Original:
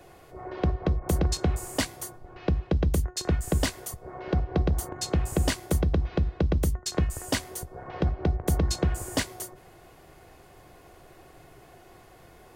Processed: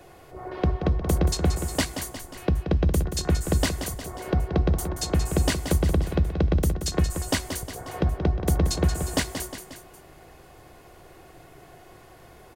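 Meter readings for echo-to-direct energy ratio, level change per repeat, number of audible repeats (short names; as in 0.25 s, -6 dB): -7.5 dB, -5.0 dB, 3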